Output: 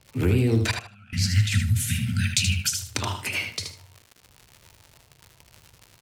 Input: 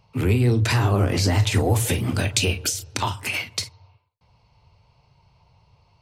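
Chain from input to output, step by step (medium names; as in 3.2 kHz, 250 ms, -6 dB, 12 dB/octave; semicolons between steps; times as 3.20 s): 0.80–2.94 s: spectral selection erased 240–1300 Hz; crackle 140 per s -32 dBFS; 0.71–1.13 s: vowel filter a; rotary cabinet horn 7 Hz; on a send: feedback delay 77 ms, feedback 18%, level -6.5 dB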